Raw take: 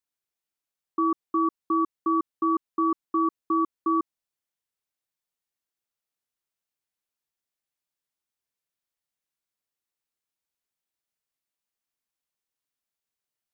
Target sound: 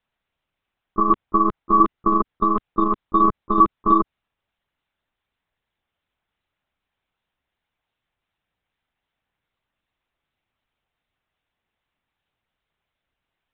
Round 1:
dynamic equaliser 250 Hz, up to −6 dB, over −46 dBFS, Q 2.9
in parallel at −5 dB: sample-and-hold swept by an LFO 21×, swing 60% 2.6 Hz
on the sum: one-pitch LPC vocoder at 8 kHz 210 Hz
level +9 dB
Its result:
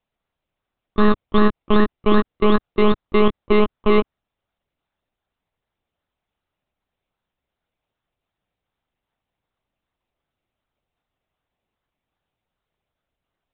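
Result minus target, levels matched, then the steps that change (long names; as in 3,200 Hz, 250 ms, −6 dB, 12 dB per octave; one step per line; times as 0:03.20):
sample-and-hold swept by an LFO: distortion +16 dB
change: sample-and-hold swept by an LFO 6×, swing 60% 2.6 Hz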